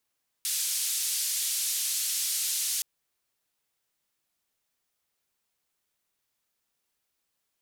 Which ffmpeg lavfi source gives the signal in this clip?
ffmpeg -f lavfi -i "anoisesrc=color=white:duration=2.37:sample_rate=44100:seed=1,highpass=frequency=4000,lowpass=frequency=12000,volume=-20.1dB" out.wav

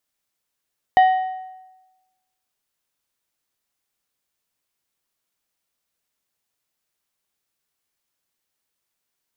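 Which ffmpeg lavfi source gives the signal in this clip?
ffmpeg -f lavfi -i "aevalsrc='0.398*pow(10,-3*t/1.1)*sin(2*PI*749*t)+0.106*pow(10,-3*t/0.836)*sin(2*PI*1872.5*t)+0.0282*pow(10,-3*t/0.726)*sin(2*PI*2996*t)+0.0075*pow(10,-3*t/0.679)*sin(2*PI*3745*t)+0.002*pow(10,-3*t/0.627)*sin(2*PI*4868.5*t)':duration=1.55:sample_rate=44100" out.wav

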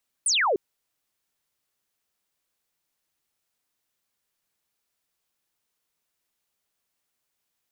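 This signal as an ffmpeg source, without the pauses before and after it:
ffmpeg -f lavfi -i "aevalsrc='0.106*clip(t/0.002,0,1)*clip((0.3-t)/0.002,0,1)*sin(2*PI*10000*0.3/log(350/10000)*(exp(log(350/10000)*t/0.3)-1))':duration=0.3:sample_rate=44100" out.wav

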